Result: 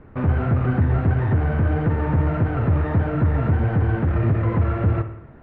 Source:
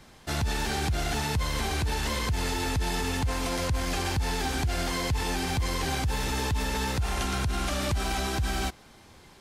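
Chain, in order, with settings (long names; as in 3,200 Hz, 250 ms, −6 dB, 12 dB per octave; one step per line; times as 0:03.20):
each half-wave held at its own peak
low-pass filter 1,100 Hz 24 dB per octave
low-shelf EQ 220 Hz +10 dB
wrong playback speed 45 rpm record played at 78 rpm
convolution reverb, pre-delay 56 ms, DRR 10 dB
flanger 1.6 Hz, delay 5.7 ms, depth 9 ms, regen −45%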